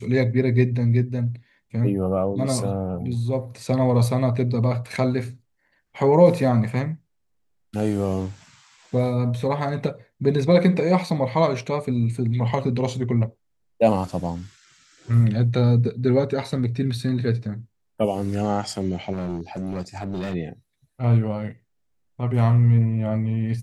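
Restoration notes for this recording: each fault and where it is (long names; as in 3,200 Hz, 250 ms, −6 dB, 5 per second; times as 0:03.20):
0:19.12–0:20.35: clipping −24.5 dBFS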